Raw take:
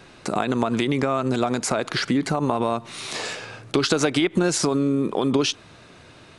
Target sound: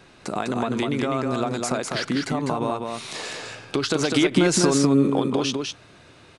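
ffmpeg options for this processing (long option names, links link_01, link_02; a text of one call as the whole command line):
ffmpeg -i in.wav -filter_complex "[0:a]asettb=1/sr,asplit=3[link_01][link_02][link_03];[link_01]atrim=end=4.114[link_04];[link_02]atrim=start=4.11:end=5.2,asetpts=PTS-STARTPTS,afade=type=in:duration=0.004:curve=qsin,afade=type=out:start_time=1.086:duration=0.004:curve=qsin,acontrast=24[link_05];[link_03]atrim=start=5.196[link_06];[link_04][link_05]acrossfade=duration=0.004:curve1=hsin:curve2=qsin[link_07];[link_07][link_06]acrossfade=duration=0.004:curve1=qsin:curve2=hsin,aecho=1:1:201:0.631,volume=-3.5dB" out.wav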